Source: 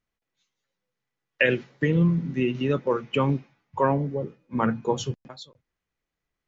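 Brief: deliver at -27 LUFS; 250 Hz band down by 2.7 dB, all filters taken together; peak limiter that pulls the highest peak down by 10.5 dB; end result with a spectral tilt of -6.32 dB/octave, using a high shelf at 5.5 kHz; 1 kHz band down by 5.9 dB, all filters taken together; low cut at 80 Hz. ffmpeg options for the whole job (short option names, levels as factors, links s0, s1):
-af "highpass=80,equalizer=f=250:t=o:g=-3.5,equalizer=f=1000:t=o:g=-6.5,highshelf=f=5500:g=-5,volume=1.58,alimiter=limit=0.168:level=0:latency=1"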